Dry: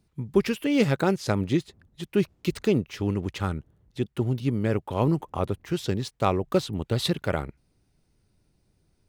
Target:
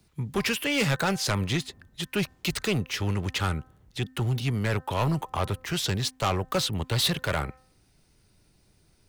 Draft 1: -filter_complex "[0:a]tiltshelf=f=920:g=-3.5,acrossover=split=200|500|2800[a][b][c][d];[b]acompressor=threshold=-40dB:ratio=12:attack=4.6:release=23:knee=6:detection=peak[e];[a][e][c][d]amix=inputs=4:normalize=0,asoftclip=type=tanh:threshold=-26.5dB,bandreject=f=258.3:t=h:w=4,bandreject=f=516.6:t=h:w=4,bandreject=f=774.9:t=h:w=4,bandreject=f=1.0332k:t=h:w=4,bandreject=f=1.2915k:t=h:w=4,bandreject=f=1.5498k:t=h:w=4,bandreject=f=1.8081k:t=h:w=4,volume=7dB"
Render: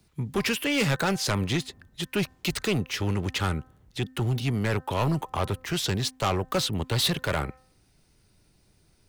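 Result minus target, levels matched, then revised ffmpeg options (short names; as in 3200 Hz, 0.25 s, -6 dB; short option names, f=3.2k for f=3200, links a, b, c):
compressor: peak gain reduction -9 dB
-filter_complex "[0:a]tiltshelf=f=920:g=-3.5,acrossover=split=200|500|2800[a][b][c][d];[b]acompressor=threshold=-50dB:ratio=12:attack=4.6:release=23:knee=6:detection=peak[e];[a][e][c][d]amix=inputs=4:normalize=0,asoftclip=type=tanh:threshold=-26.5dB,bandreject=f=258.3:t=h:w=4,bandreject=f=516.6:t=h:w=4,bandreject=f=774.9:t=h:w=4,bandreject=f=1.0332k:t=h:w=4,bandreject=f=1.2915k:t=h:w=4,bandreject=f=1.5498k:t=h:w=4,bandreject=f=1.8081k:t=h:w=4,volume=7dB"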